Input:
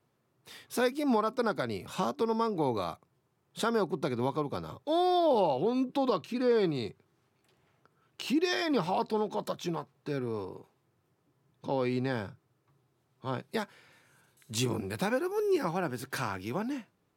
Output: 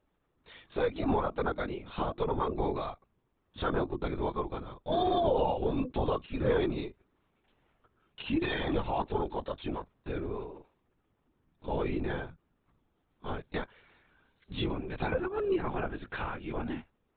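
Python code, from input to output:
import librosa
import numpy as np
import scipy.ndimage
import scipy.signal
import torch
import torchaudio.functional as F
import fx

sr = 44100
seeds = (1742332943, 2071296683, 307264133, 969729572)

y = fx.lpc_vocoder(x, sr, seeds[0], excitation='whisper', order=16)
y = F.gain(torch.from_numpy(y), -1.5).numpy()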